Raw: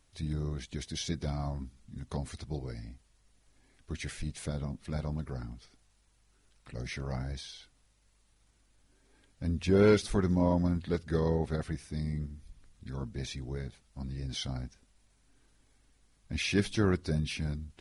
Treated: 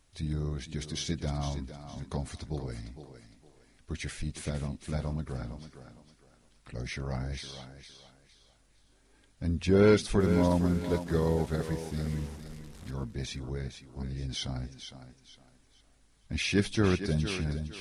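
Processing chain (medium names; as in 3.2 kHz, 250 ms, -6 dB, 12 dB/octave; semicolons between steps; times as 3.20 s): 10.20–12.91 s: one-bit delta coder 64 kbps, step -45.5 dBFS; thinning echo 459 ms, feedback 31%, high-pass 200 Hz, level -9 dB; trim +1.5 dB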